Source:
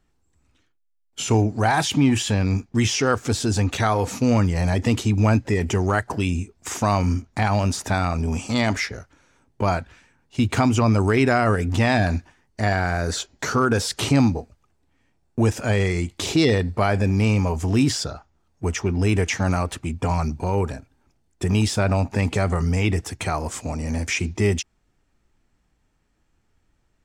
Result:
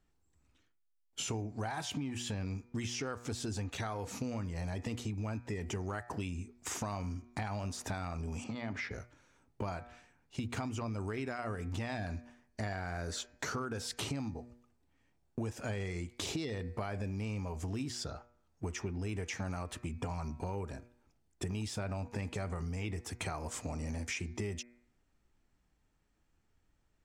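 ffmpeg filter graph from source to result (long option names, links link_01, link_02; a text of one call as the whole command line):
ffmpeg -i in.wav -filter_complex "[0:a]asettb=1/sr,asplit=3[link_01][link_02][link_03];[link_01]atrim=end=8.444[link_04];[link_02]atrim=start=8.44:end=8.91,asetpts=PTS-STARTPTS,afade=type=in:duration=0.004:curve=qsin,afade=type=out:start_time=0.466:duration=0.004:curve=qsin,bass=frequency=250:gain=6,treble=frequency=4000:gain=-10,acompressor=threshold=-24dB:ratio=5:attack=3.2:release=140:knee=1:detection=peak,highpass=120,lowpass=5800[link_05];[link_03]atrim=start=8.906[link_06];[link_04][link_05]acrossfade=duration=0.004:curve1=hsin:curve2=qsin[link_07];[link_07][link_06]acrossfade=duration=0.004:curve1=qsin:curve2=hsin,bandreject=frequency=120.3:width_type=h:width=4,bandreject=frequency=240.6:width_type=h:width=4,bandreject=frequency=360.9:width_type=h:width=4,bandreject=frequency=481.2:width_type=h:width=4,bandreject=frequency=601.5:width_type=h:width=4,bandreject=frequency=721.8:width_type=h:width=4,bandreject=frequency=842.1:width_type=h:width=4,bandreject=frequency=962.4:width_type=h:width=4,bandreject=frequency=1082.7:width_type=h:width=4,bandreject=frequency=1203:width_type=h:width=4,bandreject=frequency=1323.3:width_type=h:width=4,bandreject=frequency=1443.6:width_type=h:width=4,bandreject=frequency=1563.9:width_type=h:width=4,bandreject=frequency=1684.2:width_type=h:width=4,bandreject=frequency=1804.5:width_type=h:width=4,bandreject=frequency=1924.8:width_type=h:width=4,bandreject=frequency=2045.1:width_type=h:width=4,bandreject=frequency=2165.4:width_type=h:width=4,bandreject=frequency=2285.7:width_type=h:width=4,bandreject=frequency=2406:width_type=h:width=4,bandreject=frequency=2526.3:width_type=h:width=4,acompressor=threshold=-27dB:ratio=12,volume=-7.5dB" out.wav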